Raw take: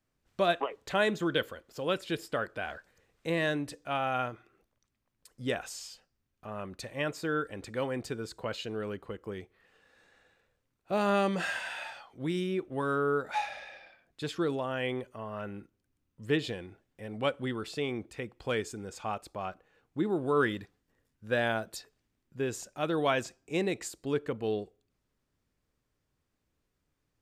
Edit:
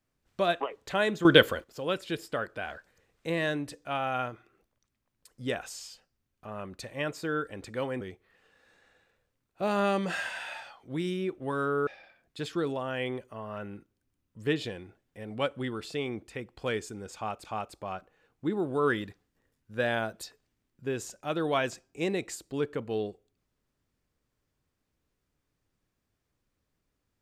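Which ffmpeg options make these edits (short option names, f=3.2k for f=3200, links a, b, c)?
-filter_complex "[0:a]asplit=6[a][b][c][d][e][f];[a]atrim=end=1.252[g];[b]atrim=start=1.248:end=1.642,asetpts=PTS-STARTPTS,volume=11.5dB[h];[c]atrim=start=1.638:end=8.012[i];[d]atrim=start=9.308:end=13.172[j];[e]atrim=start=13.698:end=19.282[k];[f]atrim=start=18.978[l];[g][h]acrossfade=d=0.004:c1=hsin:c2=hsin[m];[m][i]acrossfade=d=0.004:c1=hsin:c2=hsin[n];[n][j]acrossfade=d=0.004:c1=hsin:c2=hsin[o];[o][k]acrossfade=d=0.004:c1=hsin:c2=hsin[p];[p][l]acrossfade=d=0.004:c1=hsin:c2=hsin"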